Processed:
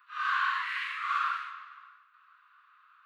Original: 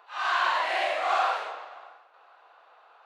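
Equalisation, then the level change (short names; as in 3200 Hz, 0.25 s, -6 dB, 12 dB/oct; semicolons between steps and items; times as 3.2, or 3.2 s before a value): steep high-pass 1100 Hz 96 dB/oct; bell 6800 Hz -15 dB 2.9 oct; +3.5 dB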